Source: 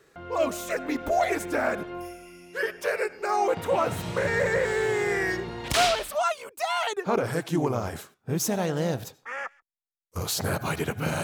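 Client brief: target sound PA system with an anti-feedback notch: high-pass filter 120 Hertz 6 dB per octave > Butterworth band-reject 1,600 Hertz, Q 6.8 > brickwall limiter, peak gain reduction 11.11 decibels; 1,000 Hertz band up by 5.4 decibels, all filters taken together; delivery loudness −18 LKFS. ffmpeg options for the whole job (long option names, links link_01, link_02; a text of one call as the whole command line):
ffmpeg -i in.wav -af "highpass=frequency=120:poles=1,asuperstop=centerf=1600:order=8:qfactor=6.8,equalizer=frequency=1000:width_type=o:gain=8,volume=11.5dB,alimiter=limit=-8dB:level=0:latency=1" out.wav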